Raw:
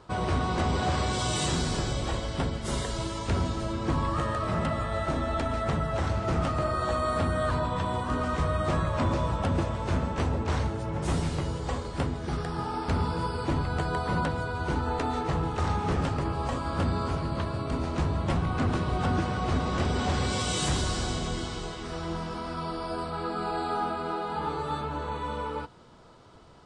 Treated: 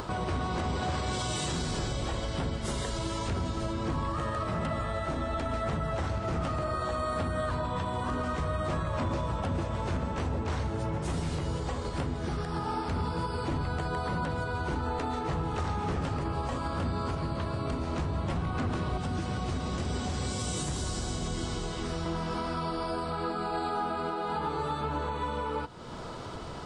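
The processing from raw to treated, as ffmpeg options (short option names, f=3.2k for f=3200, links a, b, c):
-filter_complex "[0:a]asettb=1/sr,asplit=3[a][b][c];[a]atrim=end=18.974[d];[b]atrim=start=18.97:end=22.06,asetpts=PTS-STARTPTS,afade=t=in:d=0.004:c=qsin,afade=t=out:st=3.086:d=0.004:c=qsin,acrossover=split=320|920|2100|5500[e][f][g][h][i];[e]acompressor=threshold=-33dB:ratio=3[j];[f]acompressor=threshold=-44dB:ratio=3[k];[g]acompressor=threshold=-51dB:ratio=3[l];[h]acompressor=threshold=-51dB:ratio=3[m];[i]acompressor=threshold=-39dB:ratio=3[n];[j][k][l][m][n]amix=inputs=5:normalize=0[o];[c]atrim=start=22.056[p];[d][o]acrossfade=d=0.004:c1=hsin:c2=qsin[q];[q][p]acrossfade=d=0.004:c1=qsin:c2=hsin,acompressor=mode=upward:threshold=-29dB:ratio=2.5,alimiter=level_in=0.5dB:limit=-24dB:level=0:latency=1:release=130,volume=-0.5dB,volume=1.5dB"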